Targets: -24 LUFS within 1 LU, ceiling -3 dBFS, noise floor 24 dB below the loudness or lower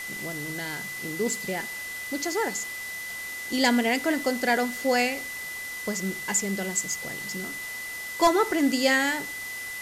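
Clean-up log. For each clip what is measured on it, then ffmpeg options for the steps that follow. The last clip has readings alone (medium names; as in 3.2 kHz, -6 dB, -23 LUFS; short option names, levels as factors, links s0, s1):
steady tone 2 kHz; tone level -34 dBFS; noise floor -36 dBFS; noise floor target -51 dBFS; loudness -27.0 LUFS; peak level -9.5 dBFS; loudness target -24.0 LUFS
-> -af "bandreject=f=2000:w=30"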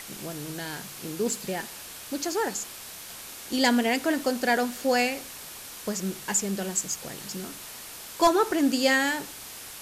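steady tone not found; noise floor -42 dBFS; noise floor target -51 dBFS
-> -af "afftdn=nr=9:nf=-42"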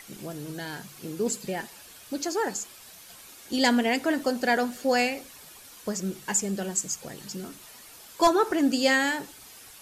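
noise floor -49 dBFS; noise floor target -51 dBFS
-> -af "afftdn=nr=6:nf=-49"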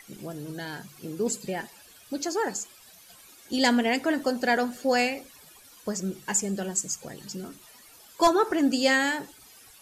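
noise floor -53 dBFS; loudness -26.5 LUFS; peak level -9.5 dBFS; loudness target -24.0 LUFS
-> -af "volume=1.33"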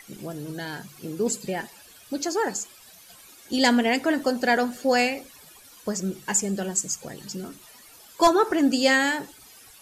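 loudness -24.0 LUFS; peak level -7.0 dBFS; noise floor -50 dBFS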